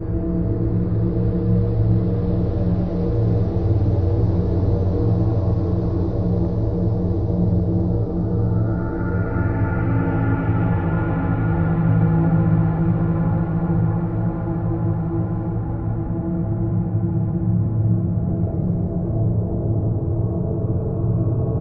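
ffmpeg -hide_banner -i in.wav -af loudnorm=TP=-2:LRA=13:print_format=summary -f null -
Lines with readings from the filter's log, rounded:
Input Integrated:    -20.9 LUFS
Input True Peak:      -6.9 dBTP
Input LRA:             2.8 LU
Input Threshold:     -30.9 LUFS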